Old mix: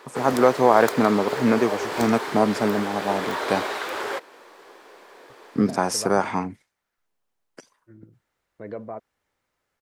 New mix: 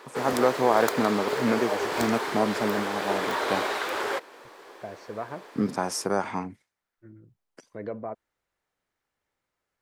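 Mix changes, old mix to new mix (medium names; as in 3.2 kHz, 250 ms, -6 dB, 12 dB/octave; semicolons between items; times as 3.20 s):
first voice -5.5 dB; second voice: entry -0.85 s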